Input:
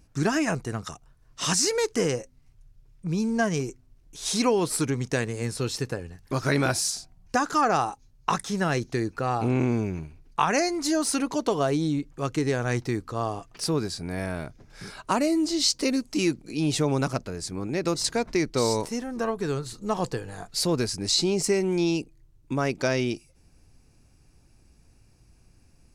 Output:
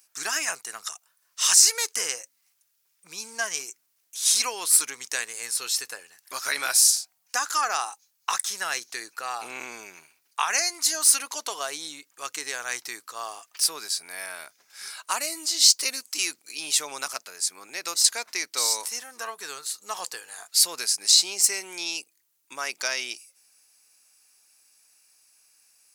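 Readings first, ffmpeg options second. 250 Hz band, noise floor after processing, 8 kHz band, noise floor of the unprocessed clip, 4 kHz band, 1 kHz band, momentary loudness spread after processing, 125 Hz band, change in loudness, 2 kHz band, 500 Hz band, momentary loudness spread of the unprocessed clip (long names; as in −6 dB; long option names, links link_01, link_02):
−23.5 dB, −71 dBFS, +10.0 dB, −59 dBFS, +6.0 dB, −3.5 dB, 19 LU, below −35 dB, +3.0 dB, +1.5 dB, −14.0 dB, 10 LU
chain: -af "highpass=1200,aemphasis=mode=production:type=50fm,volume=1.5dB"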